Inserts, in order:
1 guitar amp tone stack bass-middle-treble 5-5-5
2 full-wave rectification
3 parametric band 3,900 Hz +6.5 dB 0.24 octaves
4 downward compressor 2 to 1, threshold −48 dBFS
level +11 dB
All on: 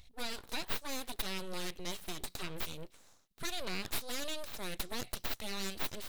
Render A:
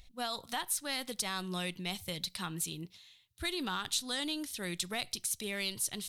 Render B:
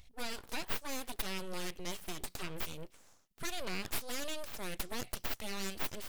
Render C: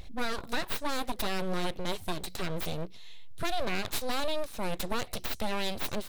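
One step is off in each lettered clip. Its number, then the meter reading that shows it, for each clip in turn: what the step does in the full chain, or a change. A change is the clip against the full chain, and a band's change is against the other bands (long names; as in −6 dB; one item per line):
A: 2, 8 kHz band +3.5 dB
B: 3, 4 kHz band −2.5 dB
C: 1, 8 kHz band −7.5 dB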